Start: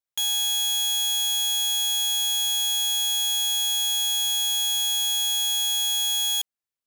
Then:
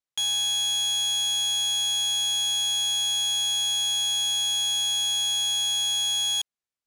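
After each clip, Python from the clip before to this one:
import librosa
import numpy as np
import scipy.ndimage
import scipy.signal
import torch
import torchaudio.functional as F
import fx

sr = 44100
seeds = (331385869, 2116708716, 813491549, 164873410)

y = scipy.signal.sosfilt(scipy.signal.butter(2, 8900.0, 'lowpass', fs=sr, output='sos'), x)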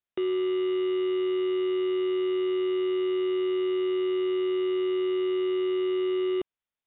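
y = fx.freq_invert(x, sr, carrier_hz=3700)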